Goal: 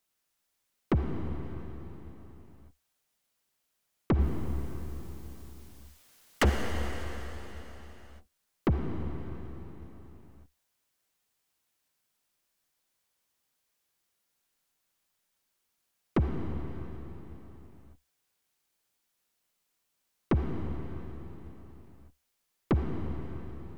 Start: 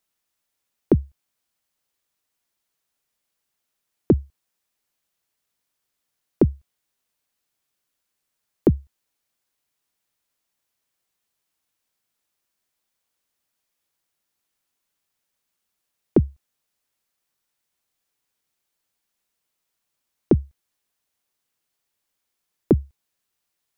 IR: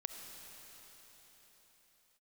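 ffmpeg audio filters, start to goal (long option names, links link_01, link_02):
-filter_complex "[0:a]asettb=1/sr,asplit=3[link_01][link_02][link_03];[link_01]atrim=end=4.194[link_04];[link_02]atrim=start=4.19:end=6.5,asetpts=PTS-STARTPTS,afade=type=in:duration=0.004:curve=qsin,afade=type=out:start_time=2.306:duration=0.004:curve=qsin,aeval=exprs='0.562*sin(PI/2*5.01*val(0)/0.562)':channel_layout=same[link_05];[link_03]atrim=start=6.496[link_06];[link_04][link_05]acrossfade=duration=0.004:curve1=hsin:curve2=qsin[link_07];[link_07][link_06]acrossfade=duration=0.004:curve1=qsin:curve2=hsin,aeval=exprs='(tanh(10*val(0)+0.25)-tanh(0.25))/10':channel_layout=same[link_08];[1:a]atrim=start_sample=2205,asetrate=52920,aresample=44100[link_09];[link_08][link_09]afir=irnorm=-1:irlink=0,volume=4dB"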